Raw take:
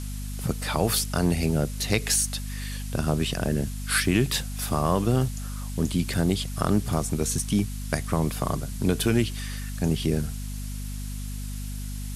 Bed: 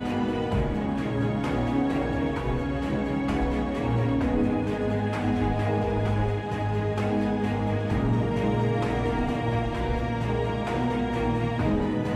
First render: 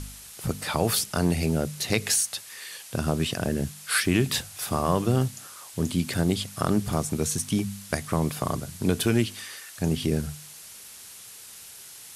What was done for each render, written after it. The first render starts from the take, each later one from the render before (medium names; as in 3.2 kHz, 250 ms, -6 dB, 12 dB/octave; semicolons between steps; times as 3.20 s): de-hum 50 Hz, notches 5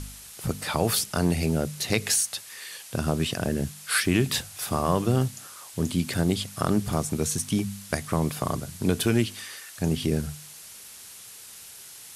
no audible change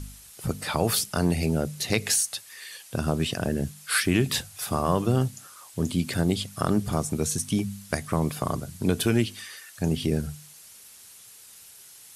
noise reduction 6 dB, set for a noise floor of -45 dBFS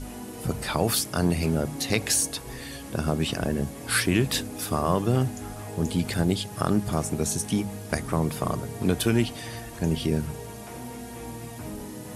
add bed -12.5 dB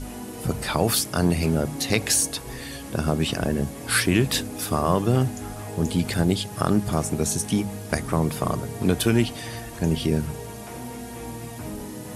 trim +2.5 dB